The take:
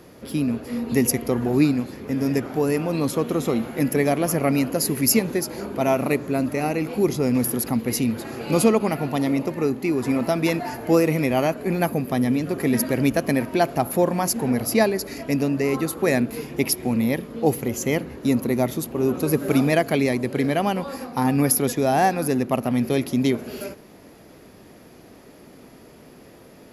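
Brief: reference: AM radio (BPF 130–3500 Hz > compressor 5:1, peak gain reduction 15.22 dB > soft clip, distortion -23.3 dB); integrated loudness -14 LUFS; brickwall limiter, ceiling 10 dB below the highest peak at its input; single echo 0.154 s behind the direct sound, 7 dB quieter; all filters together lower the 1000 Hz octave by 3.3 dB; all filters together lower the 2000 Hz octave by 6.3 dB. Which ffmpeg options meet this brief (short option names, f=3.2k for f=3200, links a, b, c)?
-af "equalizer=f=1k:t=o:g=-4,equalizer=f=2k:t=o:g=-6,alimiter=limit=-16dB:level=0:latency=1,highpass=130,lowpass=3.5k,aecho=1:1:154:0.447,acompressor=threshold=-36dB:ratio=5,asoftclip=threshold=-27.5dB,volume=25.5dB"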